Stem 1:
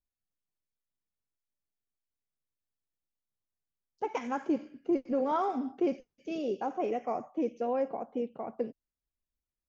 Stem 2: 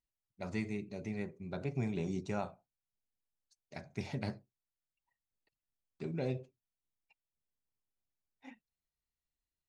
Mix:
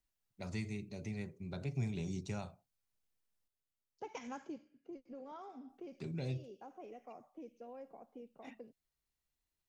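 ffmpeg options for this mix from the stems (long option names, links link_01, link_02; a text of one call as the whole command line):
ffmpeg -i stem1.wav -i stem2.wav -filter_complex "[0:a]volume=-2.5dB,afade=type=out:start_time=4.35:duration=0.3:silence=0.251189[link_01];[1:a]volume=3dB,asplit=3[link_02][link_03][link_04];[link_02]atrim=end=3.48,asetpts=PTS-STARTPTS,afade=type=out:start_time=3.476:duration=0.004:curve=hsin[link_05];[link_03]atrim=start=3.48:end=5.69,asetpts=PTS-STARTPTS,volume=0[link_06];[link_04]atrim=start=5.69,asetpts=PTS-STARTPTS,afade=type=in:duration=0.004:curve=hsin[link_07];[link_05][link_06][link_07]concat=n=3:v=0:a=1[link_08];[link_01][link_08]amix=inputs=2:normalize=0,acrossover=split=150|3000[link_09][link_10][link_11];[link_10]acompressor=threshold=-52dB:ratio=2[link_12];[link_09][link_12][link_11]amix=inputs=3:normalize=0" out.wav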